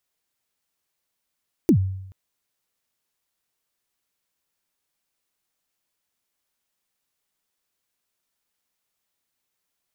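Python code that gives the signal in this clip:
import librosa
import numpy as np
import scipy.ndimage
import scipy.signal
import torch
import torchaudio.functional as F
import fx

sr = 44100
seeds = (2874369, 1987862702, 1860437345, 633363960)

y = fx.drum_kick(sr, seeds[0], length_s=0.43, level_db=-10.0, start_hz=380.0, end_hz=95.0, sweep_ms=84.0, decay_s=0.81, click=True)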